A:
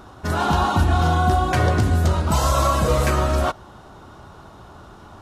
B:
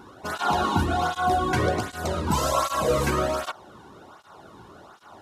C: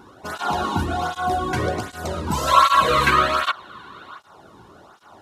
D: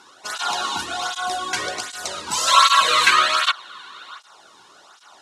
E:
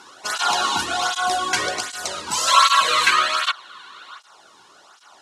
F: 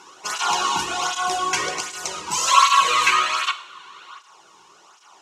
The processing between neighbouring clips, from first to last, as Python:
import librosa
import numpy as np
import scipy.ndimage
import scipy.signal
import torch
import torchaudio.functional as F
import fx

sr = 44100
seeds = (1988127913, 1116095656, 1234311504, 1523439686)

y1 = fx.flanger_cancel(x, sr, hz=1.3, depth_ms=1.7)
y2 = fx.spec_box(y1, sr, start_s=2.48, length_s=1.71, low_hz=960.0, high_hz=4500.0, gain_db=12)
y3 = fx.weighting(y2, sr, curve='ITU-R 468')
y3 = y3 * librosa.db_to_amplitude(-1.5)
y4 = fx.rider(y3, sr, range_db=4, speed_s=2.0)
y4 = fx.notch(y4, sr, hz=3700.0, q=28.0)
y5 = fx.ripple_eq(y4, sr, per_octave=0.75, db=7)
y5 = fx.rev_double_slope(y5, sr, seeds[0], early_s=0.62, late_s=1.6, knee_db=-18, drr_db=10.5)
y5 = y5 * librosa.db_to_amplitude(-2.0)